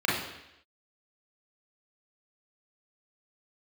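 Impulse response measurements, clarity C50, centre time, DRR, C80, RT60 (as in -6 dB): 2.0 dB, 61 ms, -6.5 dB, 5.5 dB, 0.85 s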